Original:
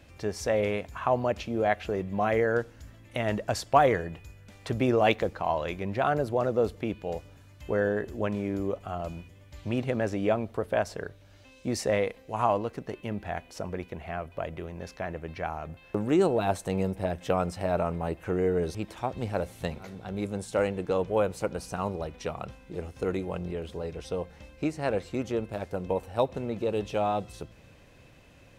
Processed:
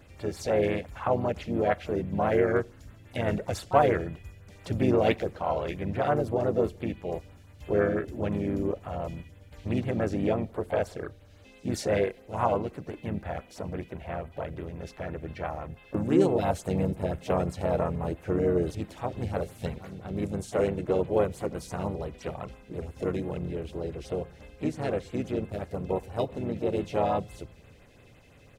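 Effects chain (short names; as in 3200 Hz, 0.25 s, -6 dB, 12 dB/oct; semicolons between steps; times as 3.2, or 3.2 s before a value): harmonic-percussive split harmonic +4 dB; harmoniser -4 st -4 dB, +5 st -13 dB; LFO notch sine 5.9 Hz 1000–6100 Hz; gain -3.5 dB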